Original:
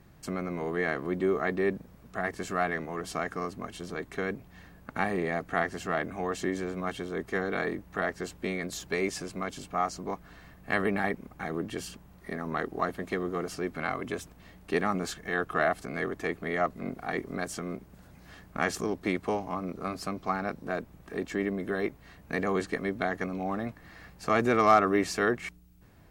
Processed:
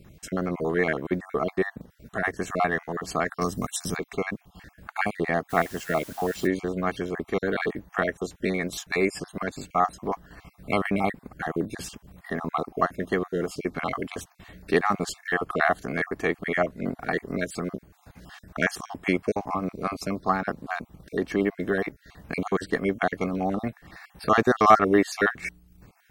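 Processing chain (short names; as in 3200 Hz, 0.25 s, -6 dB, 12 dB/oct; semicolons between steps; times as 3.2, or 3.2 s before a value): random spectral dropouts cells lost 32%; 3.41–3.97 tone controls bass +7 dB, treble +15 dB; transient shaper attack 0 dB, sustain -5 dB; 5.49–6.46 added noise white -53 dBFS; gain +6.5 dB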